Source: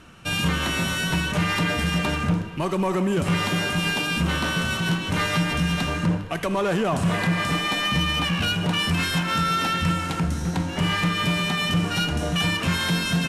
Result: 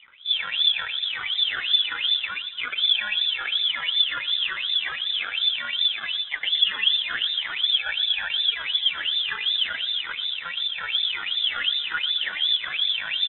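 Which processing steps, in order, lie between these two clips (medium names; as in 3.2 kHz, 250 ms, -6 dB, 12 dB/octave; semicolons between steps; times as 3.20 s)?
band-stop 1.6 kHz; in parallel at +3 dB: compressor with a negative ratio -24 dBFS, ratio -1; on the sum: decimation with a swept rate 40×, swing 60% 0.4 Hz; wah-wah 2.7 Hz 280–2400 Hz, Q 10; on a send: feedback delay 119 ms, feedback 55%, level -17 dB; on the sum: frequency inversion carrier 3.8 kHz; trim +8 dB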